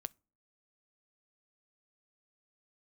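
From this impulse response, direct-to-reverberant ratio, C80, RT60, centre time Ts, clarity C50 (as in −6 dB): 18.0 dB, 37.0 dB, non-exponential decay, 1 ms, 29.5 dB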